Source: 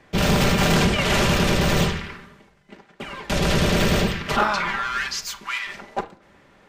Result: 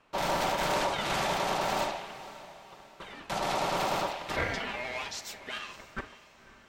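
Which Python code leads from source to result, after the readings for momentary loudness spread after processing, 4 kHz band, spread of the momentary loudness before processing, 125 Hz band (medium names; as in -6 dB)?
17 LU, -10.5 dB, 14 LU, -20.0 dB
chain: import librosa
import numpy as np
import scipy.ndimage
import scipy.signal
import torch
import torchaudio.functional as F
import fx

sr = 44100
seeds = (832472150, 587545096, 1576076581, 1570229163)

y = x * np.sin(2.0 * np.pi * 760.0 * np.arange(len(x)) / sr)
y = fx.echo_diffused(y, sr, ms=534, feedback_pct=44, wet_db=-16.0)
y = y * librosa.db_to_amplitude(-8.0)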